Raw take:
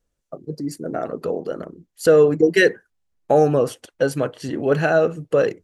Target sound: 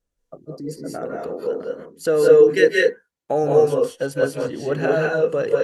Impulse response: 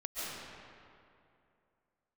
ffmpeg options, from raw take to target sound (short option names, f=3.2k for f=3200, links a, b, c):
-filter_complex "[0:a]asettb=1/sr,asplit=3[a][b][c];[a]atrim=end=1.144[d];[b]atrim=start=1.14:end=3.44,asetpts=PTS-STARTPTS,afade=t=in:d=0.004:c=qsin,afade=t=out:st=2.296:d=0.004:c=qsin,highpass=f=140:p=1[e];[c]atrim=start=3.436[f];[d][e]acrossfade=d=0.004:c1=hsin:c2=qsin[g];[g][f]acrossfade=d=0.004:c1=qsin:c2=hsin[h];[1:a]atrim=start_sample=2205,afade=t=out:st=0.21:d=0.01,atrim=end_sample=9702,asetrate=33075,aresample=44100[i];[h][i]afir=irnorm=-1:irlink=0,volume=-1.5dB"